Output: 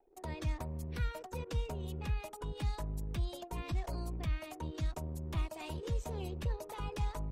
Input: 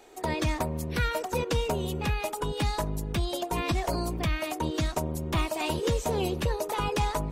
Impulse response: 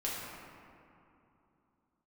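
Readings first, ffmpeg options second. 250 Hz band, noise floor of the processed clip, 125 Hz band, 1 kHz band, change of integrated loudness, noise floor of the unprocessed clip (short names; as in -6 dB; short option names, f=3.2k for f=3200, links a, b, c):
-12.5 dB, -51 dBFS, -6.5 dB, -14.5 dB, -10.0 dB, -39 dBFS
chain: -filter_complex "[0:a]acrossover=split=130[a][b];[b]acompressor=threshold=-56dB:ratio=1.5[c];[a][c]amix=inputs=2:normalize=0,anlmdn=0.01,volume=-4.5dB"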